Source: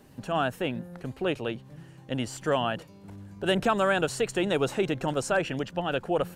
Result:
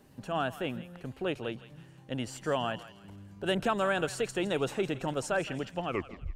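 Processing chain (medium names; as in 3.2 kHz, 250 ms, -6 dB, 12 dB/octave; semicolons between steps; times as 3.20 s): tape stop on the ending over 0.51 s; thinning echo 164 ms, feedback 41%, high-pass 1.1 kHz, level -13 dB; trim -4.5 dB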